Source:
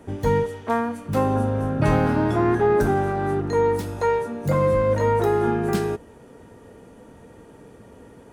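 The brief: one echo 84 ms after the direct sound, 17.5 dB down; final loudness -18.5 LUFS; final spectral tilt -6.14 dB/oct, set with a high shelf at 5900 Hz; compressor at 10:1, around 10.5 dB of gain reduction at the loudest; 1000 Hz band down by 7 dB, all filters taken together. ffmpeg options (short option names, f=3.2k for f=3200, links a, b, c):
-af "equalizer=f=1k:t=o:g=-9,highshelf=f=5.9k:g=3.5,acompressor=threshold=-27dB:ratio=10,aecho=1:1:84:0.133,volume=13dB"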